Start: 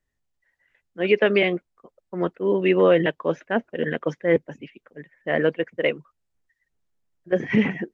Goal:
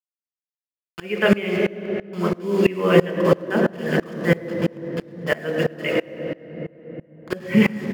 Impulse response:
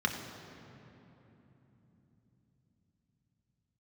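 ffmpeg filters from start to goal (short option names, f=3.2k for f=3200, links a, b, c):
-filter_complex "[0:a]agate=range=-33dB:threshold=-46dB:ratio=3:detection=peak,acrusher=bits=5:mix=0:aa=0.000001,aecho=1:1:107|214|321|428|535:0.211|0.112|0.0594|0.0315|0.0167[a];[1:a]atrim=start_sample=2205,asetrate=37926,aresample=44100[b];[a][b]afir=irnorm=-1:irlink=0,aeval=exprs='val(0)*pow(10,-25*if(lt(mod(-3*n/s,1),2*abs(-3)/1000),1-mod(-3*n/s,1)/(2*abs(-3)/1000),(mod(-3*n/s,1)-2*abs(-3)/1000)/(1-2*abs(-3)/1000))/20)':c=same"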